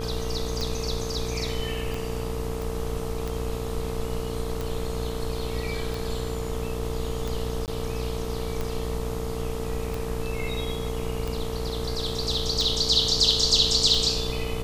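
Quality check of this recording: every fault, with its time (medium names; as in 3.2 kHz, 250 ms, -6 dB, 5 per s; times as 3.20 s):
buzz 60 Hz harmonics 22 -32 dBFS
tick 45 rpm
whine 450 Hz -33 dBFS
2.62 s: pop
7.66–7.68 s: dropout 18 ms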